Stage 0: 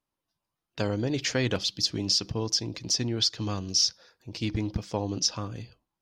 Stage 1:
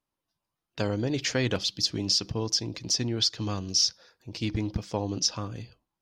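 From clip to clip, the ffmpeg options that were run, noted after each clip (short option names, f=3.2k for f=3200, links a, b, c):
-af anull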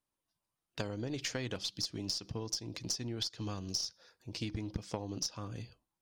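-af "equalizer=f=9.1k:t=o:w=0.64:g=6.5,acompressor=threshold=-30dB:ratio=12,aeval=exprs='0.133*(cos(1*acos(clip(val(0)/0.133,-1,1)))-cos(1*PI/2))+0.00668*(cos(2*acos(clip(val(0)/0.133,-1,1)))-cos(2*PI/2))+0.0168*(cos(3*acos(clip(val(0)/0.133,-1,1)))-cos(3*PI/2))+0.00266*(cos(6*acos(clip(val(0)/0.133,-1,1)))-cos(6*PI/2))+0.00106*(cos(8*acos(clip(val(0)/0.133,-1,1)))-cos(8*PI/2))':c=same"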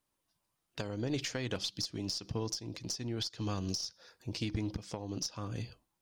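-af "alimiter=level_in=4.5dB:limit=-24dB:level=0:latency=1:release=444,volume=-4.5dB,volume=6dB"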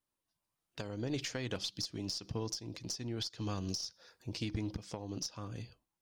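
-af "dynaudnorm=f=130:g=11:m=5dB,volume=-7dB"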